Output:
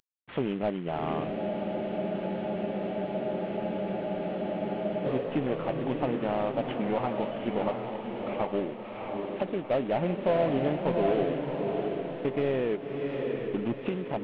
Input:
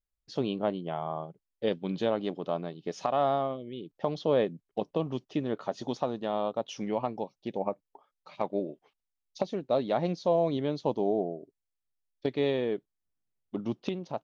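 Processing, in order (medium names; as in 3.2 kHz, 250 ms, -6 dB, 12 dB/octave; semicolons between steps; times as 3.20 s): CVSD coder 16 kbps; in parallel at +1.5 dB: compression, threshold -39 dBFS, peak gain reduction 16.5 dB; on the sum: saturation -18 dBFS, distortion -19 dB; on a send: echo that smears into a reverb 717 ms, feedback 44%, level -3 dB; on the sum: spectral freeze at 1.38 s, 3.67 s; tape noise reduction on one side only encoder only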